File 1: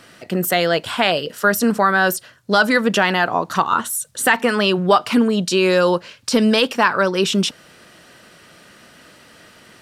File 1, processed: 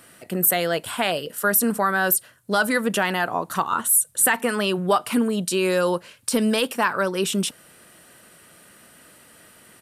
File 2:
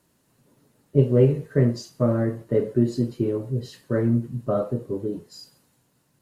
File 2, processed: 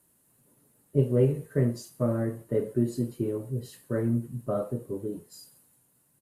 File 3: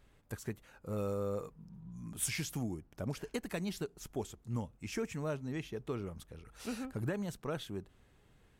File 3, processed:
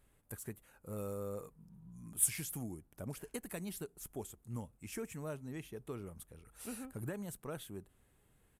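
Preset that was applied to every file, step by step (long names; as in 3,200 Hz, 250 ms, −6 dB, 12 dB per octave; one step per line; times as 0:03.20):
high shelf with overshoot 7,400 Hz +10.5 dB, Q 1.5
downsampling to 32,000 Hz
level −5.5 dB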